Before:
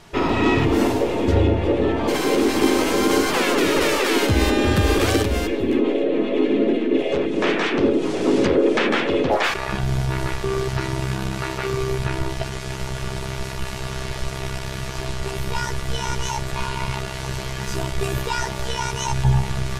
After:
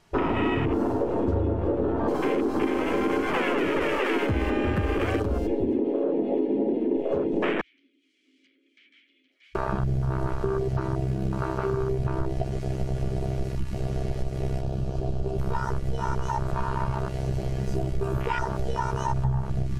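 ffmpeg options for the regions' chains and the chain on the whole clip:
-filter_complex "[0:a]asettb=1/sr,asplit=3[a][b][c];[a]atrim=end=7.614[d];[b]atrim=start=7.61:end=9.55,asetpts=PTS-STARTPTS,afade=t=in:d=0.004:c=qsin,afade=t=out:st=1.936:d=0.004:c=qsin,asplit=3[e][f][g];[e]bandpass=f=270:t=q:w=8,volume=0dB[h];[f]bandpass=f=2.29k:t=q:w=8,volume=-6dB[i];[g]bandpass=f=3.01k:t=q:w=8,volume=-9dB[j];[h][i][j]amix=inputs=3:normalize=0,aderivative,bandreject=f=470:w=9.1[k];[c]atrim=start=9.546[l];[d][k]acrossfade=d=0.004:c1=hsin:c2=qsin[m];[m][l]acrossfade=d=0.004:c1=qsin:c2=hsin,asettb=1/sr,asplit=3[n][o][p];[n]atrim=end=14.614[q];[o]atrim=start=14.61:end=15.39,asetpts=PTS-STARTPTS,afade=t=in:d=0.004:c=qsin,afade=t=out:st=0.776:d=0.004:c=qsin,lowpass=f=3.8k:p=1,equalizer=f=2k:w=3:g=-12[r];[p]atrim=start=15.386[s];[q][r]acrossfade=d=0.004:c1=hsin:c2=qsin[t];[t][s]acrossfade=d=0.004:c1=qsin:c2=hsin,bandreject=f=3.6k:w=17,afwtdn=0.0501,acompressor=threshold=-25dB:ratio=6,volume=3dB"

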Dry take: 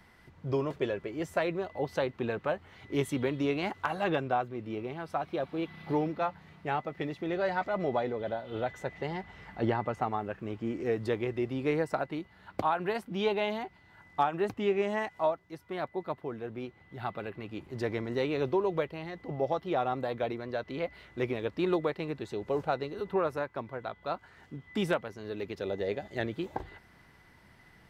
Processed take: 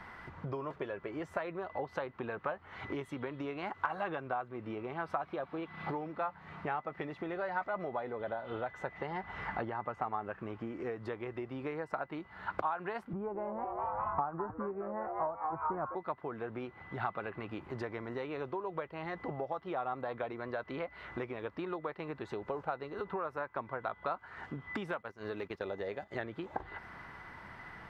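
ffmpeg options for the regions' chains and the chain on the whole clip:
-filter_complex "[0:a]asettb=1/sr,asplit=3[a][b][c];[a]atrim=end=13.134[d];[b]atrim=start=13.13:end=15.95,asetpts=PTS-STARTPTS,afade=t=in:d=0.004:c=qsin,afade=t=out:st=2.816:d=0.004:c=qsin,lowpass=f=1.4k:w=0.5412,lowpass=f=1.4k:w=1.3066,aemphasis=mode=reproduction:type=bsi,asplit=7[e][f][g][h][i][j][k];[f]adelay=204,afreqshift=150,volume=-10dB[l];[g]adelay=408,afreqshift=300,volume=-15.2dB[m];[h]adelay=612,afreqshift=450,volume=-20.4dB[n];[i]adelay=816,afreqshift=600,volume=-25.6dB[o];[j]adelay=1020,afreqshift=750,volume=-30.8dB[p];[k]adelay=1224,afreqshift=900,volume=-36dB[q];[e][l][m][n][o][p][q]amix=inputs=7:normalize=0,atrim=end_sample=124362[r];[c]atrim=start=15.946[s];[d][r]acrossfade=d=0.004:c1=hsin:c2=qsin[t];[t][s]acrossfade=d=0.004:c1=qsin:c2=hsin,asettb=1/sr,asplit=3[u][v][w];[u]atrim=end=24.934[x];[v]atrim=start=24.93:end=26.12,asetpts=PTS-STARTPTS,afade=t=in:d=0.004:c=qsin,afade=t=out:st=1.186:d=0.004:c=qsin,agate=range=-14dB:threshold=-43dB:ratio=16:release=100:detection=peak,highshelf=f=5.9k:g=10,acompressor=mode=upward:threshold=-46dB:ratio=2.5:attack=3.2:release=140:knee=2.83:detection=peak[y];[w]atrim=start=26.116[z];[x][y]acrossfade=d=0.004:c1=hsin:c2=qsin[aa];[aa][z]acrossfade=d=0.004:c1=qsin:c2=hsin,acompressor=threshold=-43dB:ratio=12,lowpass=f=3k:p=1,equalizer=f=1.2k:t=o:w=1.7:g=11,volume=4.5dB"

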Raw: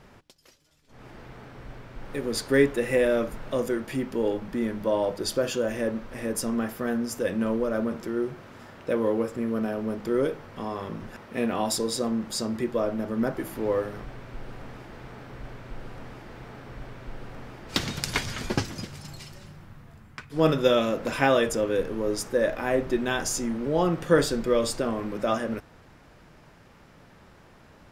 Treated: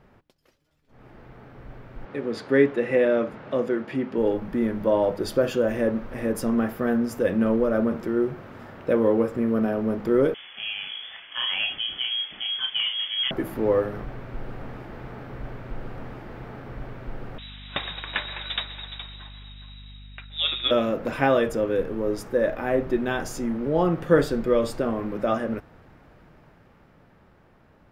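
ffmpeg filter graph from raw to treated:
-filter_complex "[0:a]asettb=1/sr,asplit=3[a][b][c];[a]atrim=end=2.054[d];[b]atrim=start=2.05:end=4.18,asetpts=PTS-STARTPTS,afade=t=in:d=0.004:c=qsin,afade=t=out:st=2.126:d=0.004:c=qsin,highpass=140,lowpass=3.7k,aemphasis=mode=production:type=cd[e];[c]atrim=start=4.176[f];[d][e]acrossfade=d=0.004:c1=hsin:c2=qsin[g];[g][f]acrossfade=d=0.004:c1=qsin:c2=hsin,asettb=1/sr,asplit=3[h][i][j];[h]atrim=end=10.344[k];[i]atrim=start=10.34:end=13.31,asetpts=PTS-STARTPTS,afade=t=in:d=0.004:c=qsin,afade=t=out:st=2.966:d=0.004:c=qsin,asplit=2[l][m];[m]adelay=32,volume=-5.5dB[n];[l][n]amix=inputs=2:normalize=0,atrim=end_sample=130977,volume=18.5dB,asoftclip=hard,volume=-18.5dB,lowpass=f=3k:t=q:w=0.5098,lowpass=f=3k:t=q:w=0.6013,lowpass=f=3k:t=q:w=0.9,lowpass=f=3k:t=q:w=2.563,afreqshift=-3500[o];[j]atrim=start=13.306[p];[k][o]acrossfade=d=0.004:c1=hsin:c2=qsin[q];[q][p]acrossfade=d=0.004:c1=qsin:c2=hsin,asettb=1/sr,asplit=3[r][s][t];[r]atrim=end=17.384[u];[s]atrim=start=17.38:end=20.71,asetpts=PTS-STARTPTS,afade=t=in:d=0.004:c=qsin,afade=t=out:st=3.326:d=0.004:c=qsin,lowpass=f=3.3k:t=q:w=0.5098,lowpass=f=3.3k:t=q:w=0.6013,lowpass=f=3.3k:t=q:w=0.9,lowpass=f=3.3k:t=q:w=2.563,afreqshift=-3900,aeval=exprs='val(0)+0.00501*(sin(2*PI*50*n/s)+sin(2*PI*2*50*n/s)/2+sin(2*PI*3*50*n/s)/3+sin(2*PI*4*50*n/s)/4+sin(2*PI*5*50*n/s)/5)':c=same,aecho=1:1:418:0.355,atrim=end_sample=146853[v];[t]atrim=start=20.706[w];[u][v]acrossfade=d=0.004:c1=hsin:c2=qsin[x];[x][w]acrossfade=d=0.004:c1=qsin:c2=hsin,dynaudnorm=f=210:g=17:m=8dB,equalizer=f=7.3k:t=o:w=2.2:g=-12.5,bandreject=f=1k:w=29,volume=-3dB"

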